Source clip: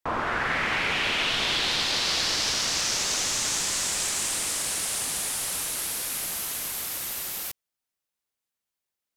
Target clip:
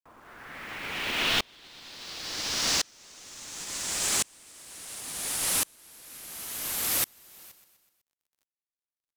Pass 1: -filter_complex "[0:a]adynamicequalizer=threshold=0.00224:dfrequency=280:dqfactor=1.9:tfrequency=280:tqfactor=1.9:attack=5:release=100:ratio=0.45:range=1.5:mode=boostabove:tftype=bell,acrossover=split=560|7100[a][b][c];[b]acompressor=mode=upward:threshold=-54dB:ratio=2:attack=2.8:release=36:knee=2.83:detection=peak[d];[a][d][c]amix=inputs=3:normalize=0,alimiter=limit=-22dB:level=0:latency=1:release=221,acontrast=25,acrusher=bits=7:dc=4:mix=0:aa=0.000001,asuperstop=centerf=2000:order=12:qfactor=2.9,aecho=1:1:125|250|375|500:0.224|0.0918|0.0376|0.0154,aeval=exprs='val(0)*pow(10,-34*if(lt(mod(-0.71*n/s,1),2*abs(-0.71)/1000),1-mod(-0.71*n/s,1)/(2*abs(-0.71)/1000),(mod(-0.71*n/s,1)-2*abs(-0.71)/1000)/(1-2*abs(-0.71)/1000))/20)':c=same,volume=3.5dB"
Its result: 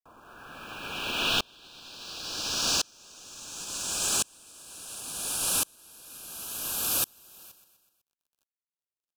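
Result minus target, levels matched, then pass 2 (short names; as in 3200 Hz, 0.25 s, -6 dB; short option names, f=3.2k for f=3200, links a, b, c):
2000 Hz band -3.0 dB
-filter_complex "[0:a]adynamicequalizer=threshold=0.00224:dfrequency=280:dqfactor=1.9:tfrequency=280:tqfactor=1.9:attack=5:release=100:ratio=0.45:range=1.5:mode=boostabove:tftype=bell,acrossover=split=560|7100[a][b][c];[b]acompressor=mode=upward:threshold=-54dB:ratio=2:attack=2.8:release=36:knee=2.83:detection=peak[d];[a][d][c]amix=inputs=3:normalize=0,alimiter=limit=-22dB:level=0:latency=1:release=221,acontrast=25,acrusher=bits=7:dc=4:mix=0:aa=0.000001,aecho=1:1:125|250|375|500:0.224|0.0918|0.0376|0.0154,aeval=exprs='val(0)*pow(10,-34*if(lt(mod(-0.71*n/s,1),2*abs(-0.71)/1000),1-mod(-0.71*n/s,1)/(2*abs(-0.71)/1000),(mod(-0.71*n/s,1)-2*abs(-0.71)/1000)/(1-2*abs(-0.71)/1000))/20)':c=same,volume=3.5dB"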